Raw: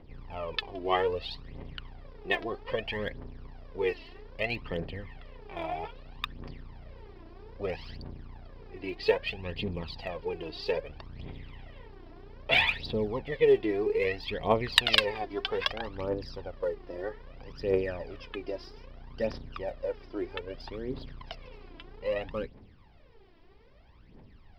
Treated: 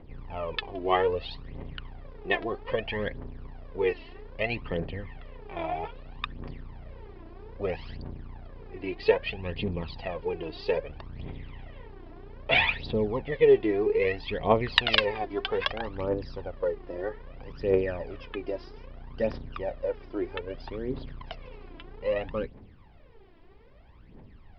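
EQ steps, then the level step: Bessel low-pass 8300 Hz; air absorption 170 m; +3.5 dB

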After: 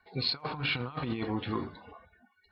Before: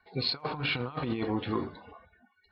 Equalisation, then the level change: dynamic EQ 470 Hz, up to -4 dB, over -45 dBFS, Q 0.85; 0.0 dB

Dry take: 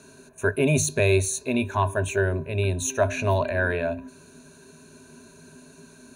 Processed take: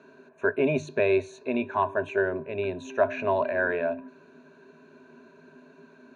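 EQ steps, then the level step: BPF 260–2200 Hz; air absorption 55 m; 0.0 dB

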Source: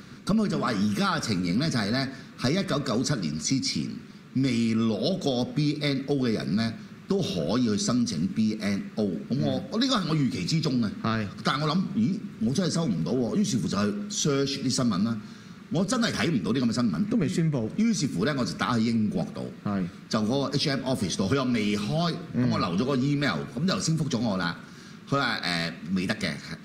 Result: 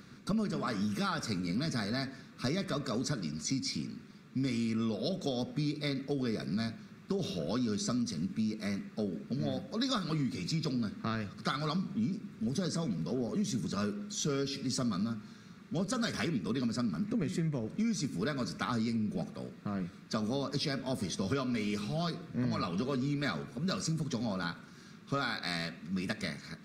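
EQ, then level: notch 3000 Hz, Q 16; -8.0 dB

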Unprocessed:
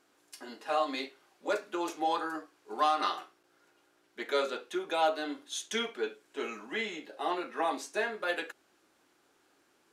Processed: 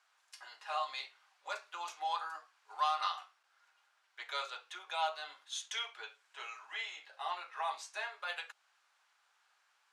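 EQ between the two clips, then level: dynamic EQ 1700 Hz, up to -6 dB, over -49 dBFS, Q 2; HPF 860 Hz 24 dB/oct; air absorption 50 m; -1.0 dB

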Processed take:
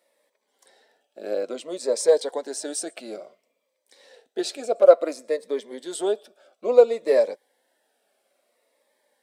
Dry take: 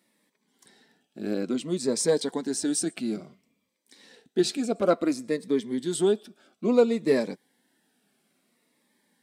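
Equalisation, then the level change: resonant high-pass 560 Hz, resonance Q 4.9; -1.5 dB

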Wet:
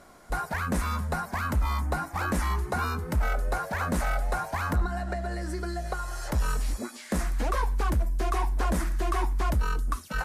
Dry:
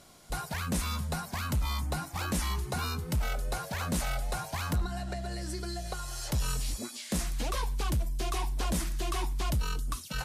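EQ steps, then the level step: bell 130 Hz -10 dB 0.72 oct; resonant high shelf 2300 Hz -8.5 dB, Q 1.5; +5.5 dB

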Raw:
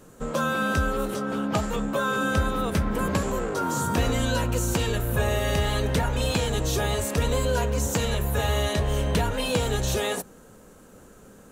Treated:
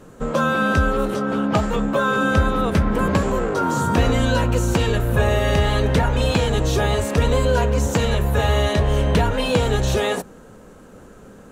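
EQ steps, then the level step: LPF 3300 Hz 6 dB/oct; +6.5 dB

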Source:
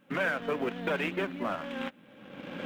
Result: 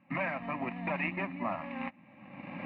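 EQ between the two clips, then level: HPF 56 Hz; LPF 2900 Hz 24 dB/oct; fixed phaser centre 2200 Hz, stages 8; +2.5 dB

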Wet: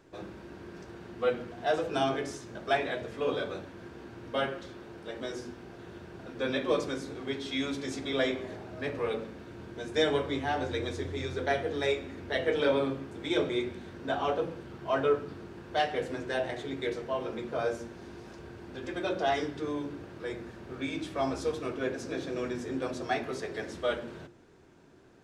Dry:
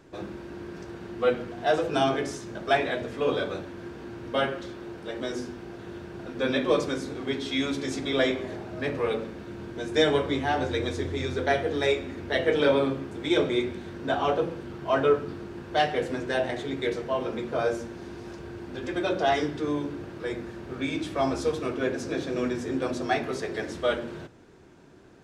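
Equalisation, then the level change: notches 50/100/150/200/250/300/350 Hz; -4.5 dB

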